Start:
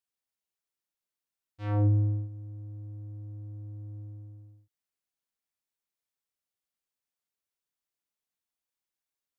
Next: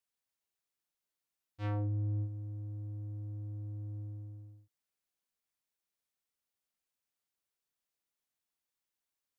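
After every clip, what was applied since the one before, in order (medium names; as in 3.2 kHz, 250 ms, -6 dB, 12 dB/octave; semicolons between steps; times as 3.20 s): peak limiter -30.5 dBFS, peak gain reduction 12 dB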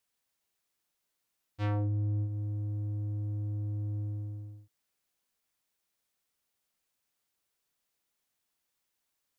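compression 3:1, threshold -38 dBFS, peak gain reduction 4.5 dB; trim +7.5 dB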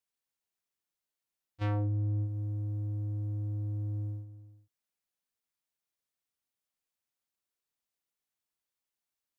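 gate -37 dBFS, range -9 dB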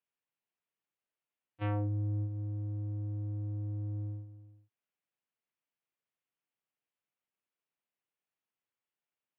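elliptic band-pass 110–2900 Hz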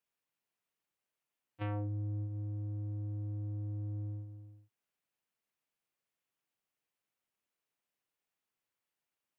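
compression 2:1, threshold -42 dBFS, peak gain reduction 7 dB; trim +2.5 dB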